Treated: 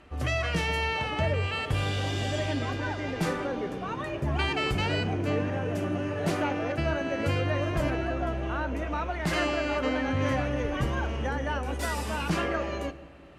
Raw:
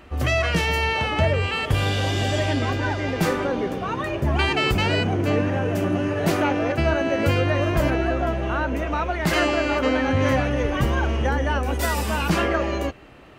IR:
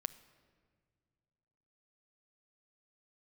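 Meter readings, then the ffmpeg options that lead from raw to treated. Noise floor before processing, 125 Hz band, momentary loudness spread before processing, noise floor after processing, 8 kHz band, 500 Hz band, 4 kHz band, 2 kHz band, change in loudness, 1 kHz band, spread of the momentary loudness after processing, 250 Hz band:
-31 dBFS, -6.5 dB, 4 LU, -37 dBFS, -7.0 dB, -7.0 dB, -7.0 dB, -7.0 dB, -7.0 dB, -7.0 dB, 4 LU, -7.0 dB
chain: -filter_complex "[0:a]lowpass=f=12k:w=0.5412,lowpass=f=12k:w=1.3066[a];[1:a]atrim=start_sample=2205[b];[a][b]afir=irnorm=-1:irlink=0,volume=-5.5dB"

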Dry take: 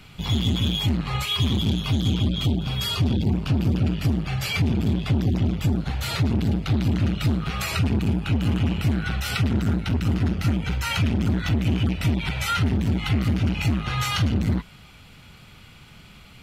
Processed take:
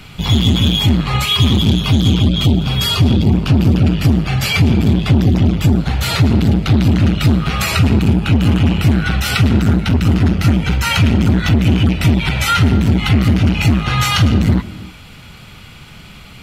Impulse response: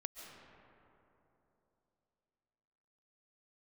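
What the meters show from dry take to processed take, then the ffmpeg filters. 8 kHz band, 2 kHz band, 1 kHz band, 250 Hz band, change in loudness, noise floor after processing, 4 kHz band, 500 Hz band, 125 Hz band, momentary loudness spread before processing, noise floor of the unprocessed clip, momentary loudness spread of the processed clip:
+10.0 dB, +10.0 dB, +10.0 dB, +10.0 dB, +10.0 dB, -37 dBFS, +10.0 dB, +10.0 dB, +10.0 dB, 3 LU, -48 dBFS, 3 LU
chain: -filter_complex "[0:a]asplit=2[a][b];[1:a]atrim=start_sample=2205,afade=t=out:st=0.39:d=0.01,atrim=end_sample=17640[c];[b][c]afir=irnorm=-1:irlink=0,volume=-5.5dB[d];[a][d]amix=inputs=2:normalize=0,volume=7.5dB"

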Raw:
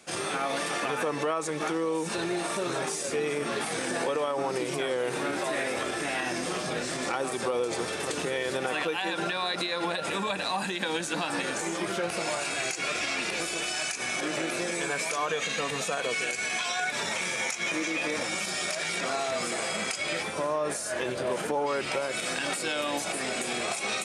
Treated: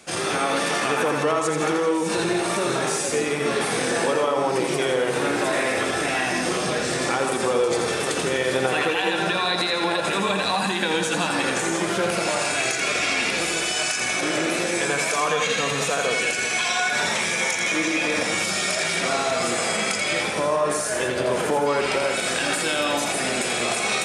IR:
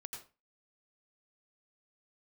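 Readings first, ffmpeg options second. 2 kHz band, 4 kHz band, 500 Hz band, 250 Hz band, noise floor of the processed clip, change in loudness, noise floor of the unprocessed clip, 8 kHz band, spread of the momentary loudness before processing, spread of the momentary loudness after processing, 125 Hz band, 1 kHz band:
+7.5 dB, +7.0 dB, +7.5 dB, +7.5 dB, -26 dBFS, +7.5 dB, -34 dBFS, +7.5 dB, 2 LU, 2 LU, +8.5 dB, +7.0 dB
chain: -filter_complex "[0:a]lowshelf=f=63:g=7.5,asplit=2[a][b];[1:a]atrim=start_sample=2205,asetrate=48510,aresample=44100,adelay=84[c];[b][c]afir=irnorm=-1:irlink=0,volume=1.5dB[d];[a][d]amix=inputs=2:normalize=0,volume=5.5dB"

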